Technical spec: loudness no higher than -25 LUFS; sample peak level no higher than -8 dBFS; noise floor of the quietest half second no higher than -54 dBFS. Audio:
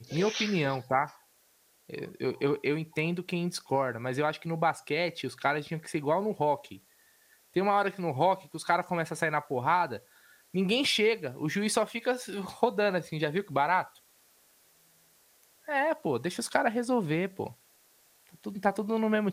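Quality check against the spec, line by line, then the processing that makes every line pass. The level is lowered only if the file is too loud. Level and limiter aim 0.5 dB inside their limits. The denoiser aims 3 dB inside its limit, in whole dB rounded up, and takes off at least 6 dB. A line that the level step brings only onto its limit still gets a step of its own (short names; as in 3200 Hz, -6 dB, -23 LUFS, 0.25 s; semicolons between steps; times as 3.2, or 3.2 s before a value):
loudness -29.5 LUFS: OK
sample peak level -8.5 dBFS: OK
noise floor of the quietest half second -66 dBFS: OK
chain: none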